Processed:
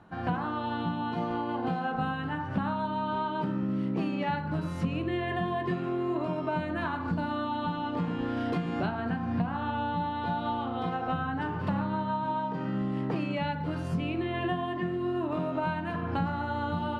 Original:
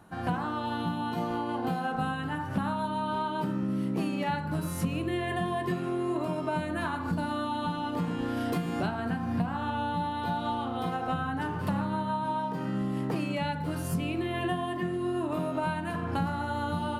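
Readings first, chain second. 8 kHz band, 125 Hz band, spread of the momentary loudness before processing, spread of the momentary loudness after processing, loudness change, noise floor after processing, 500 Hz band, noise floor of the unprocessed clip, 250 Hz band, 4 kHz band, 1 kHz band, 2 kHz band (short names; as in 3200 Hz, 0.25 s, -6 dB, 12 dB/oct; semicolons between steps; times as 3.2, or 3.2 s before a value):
under -15 dB, 0.0 dB, 2 LU, 2 LU, 0.0 dB, -35 dBFS, 0.0 dB, -34 dBFS, 0.0 dB, -2.0 dB, 0.0 dB, 0.0 dB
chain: LPF 3800 Hz 12 dB/oct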